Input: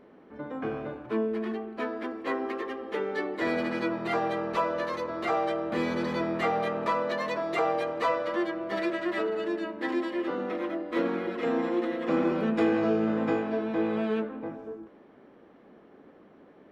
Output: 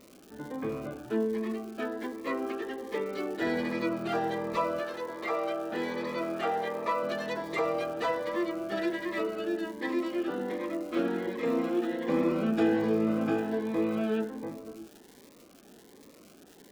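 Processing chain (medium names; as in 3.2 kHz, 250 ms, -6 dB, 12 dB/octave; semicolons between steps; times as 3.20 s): 4.79–7.03 s: tone controls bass -12 dB, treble -5 dB; crackle 300 per s -41 dBFS; Shepard-style phaser rising 1.3 Hz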